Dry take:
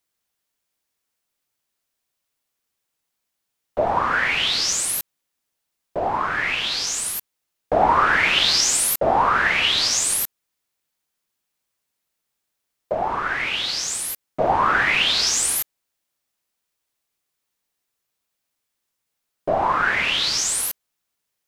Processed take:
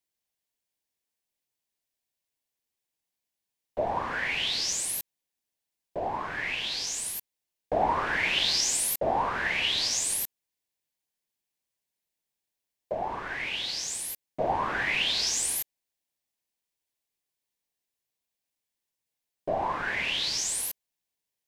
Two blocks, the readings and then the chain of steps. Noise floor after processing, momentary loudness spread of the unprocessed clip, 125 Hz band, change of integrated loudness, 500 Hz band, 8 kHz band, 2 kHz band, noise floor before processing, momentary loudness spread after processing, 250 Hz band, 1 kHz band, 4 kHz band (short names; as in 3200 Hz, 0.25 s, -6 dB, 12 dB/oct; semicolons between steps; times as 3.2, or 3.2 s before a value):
under -85 dBFS, 11 LU, -7.5 dB, -8.5 dB, -8.0 dB, -7.5 dB, -9.5 dB, -79 dBFS, 10 LU, -7.5 dB, -10.0 dB, -7.5 dB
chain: bell 1300 Hz -11.5 dB 0.34 oct; gain -7.5 dB